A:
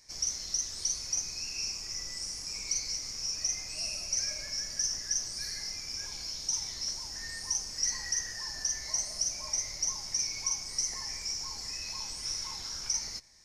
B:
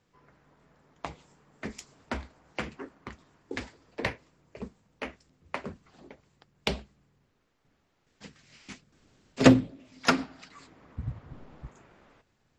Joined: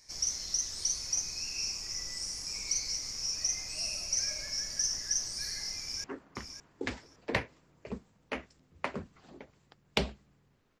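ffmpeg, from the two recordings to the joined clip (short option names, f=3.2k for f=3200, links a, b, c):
-filter_complex "[0:a]apad=whole_dur=10.8,atrim=end=10.8,atrim=end=6.042[a];[1:a]atrim=start=2.738:end=7.5[b];[a][b]acrossfade=d=0.004:c1=hsin:c2=hsin,asplit=2[c][d];[d]afade=t=in:st=5.79:d=0.01,afade=t=out:st=6.04:d=0.01,aecho=0:1:560|1120:0.354813|0.053222[e];[c][e]amix=inputs=2:normalize=0"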